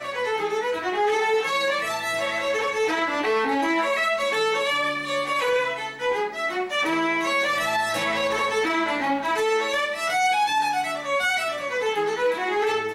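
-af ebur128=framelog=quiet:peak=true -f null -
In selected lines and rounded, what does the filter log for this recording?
Integrated loudness:
  I:         -23.3 LUFS
  Threshold: -33.3 LUFS
Loudness range:
  LRA:         0.9 LU
  Threshold: -43.2 LUFS
  LRA low:   -23.7 LUFS
  LRA high:  -22.8 LUFS
True peak:
  Peak:      -12.3 dBFS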